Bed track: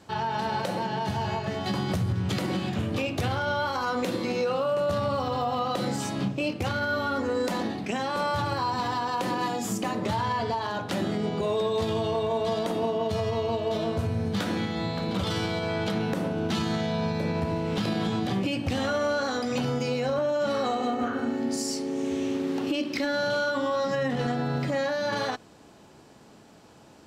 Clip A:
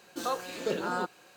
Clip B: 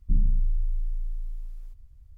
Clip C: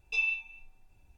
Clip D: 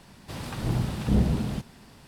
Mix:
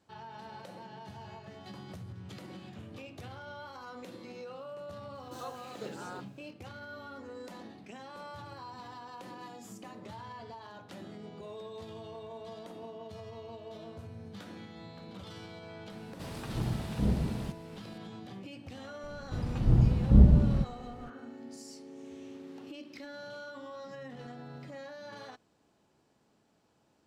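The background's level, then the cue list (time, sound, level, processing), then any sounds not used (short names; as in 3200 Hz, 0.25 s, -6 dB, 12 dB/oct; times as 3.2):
bed track -18 dB
5.15 add A -12 dB
15.91 add D -6.5 dB
19.03 add D -7 dB + tilt -3.5 dB/oct
not used: B, C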